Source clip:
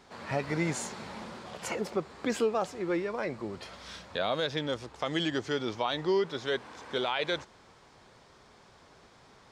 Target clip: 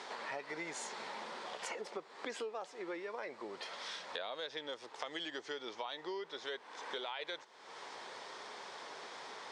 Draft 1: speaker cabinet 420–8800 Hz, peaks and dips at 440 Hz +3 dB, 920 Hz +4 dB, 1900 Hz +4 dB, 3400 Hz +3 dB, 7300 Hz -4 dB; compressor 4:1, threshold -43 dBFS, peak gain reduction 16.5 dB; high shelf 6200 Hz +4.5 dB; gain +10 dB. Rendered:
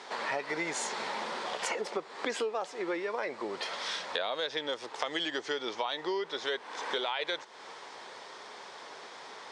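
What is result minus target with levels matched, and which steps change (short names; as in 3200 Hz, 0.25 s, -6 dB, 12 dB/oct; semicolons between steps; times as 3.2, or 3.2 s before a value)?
compressor: peak gain reduction -9 dB
change: compressor 4:1, threshold -55 dBFS, peak gain reduction 25.5 dB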